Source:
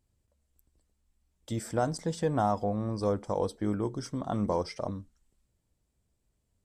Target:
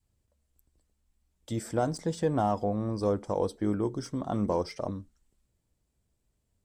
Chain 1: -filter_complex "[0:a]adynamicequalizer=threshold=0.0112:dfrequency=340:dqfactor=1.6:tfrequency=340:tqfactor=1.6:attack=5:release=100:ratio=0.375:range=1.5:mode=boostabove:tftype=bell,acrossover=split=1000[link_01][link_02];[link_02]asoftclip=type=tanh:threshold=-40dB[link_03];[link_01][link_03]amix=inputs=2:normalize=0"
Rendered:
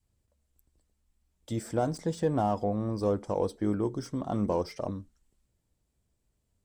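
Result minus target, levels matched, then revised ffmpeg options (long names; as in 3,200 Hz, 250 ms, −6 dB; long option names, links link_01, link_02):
soft clipping: distortion +7 dB
-filter_complex "[0:a]adynamicequalizer=threshold=0.0112:dfrequency=340:dqfactor=1.6:tfrequency=340:tqfactor=1.6:attack=5:release=100:ratio=0.375:range=1.5:mode=boostabove:tftype=bell,acrossover=split=1000[link_01][link_02];[link_02]asoftclip=type=tanh:threshold=-32dB[link_03];[link_01][link_03]amix=inputs=2:normalize=0"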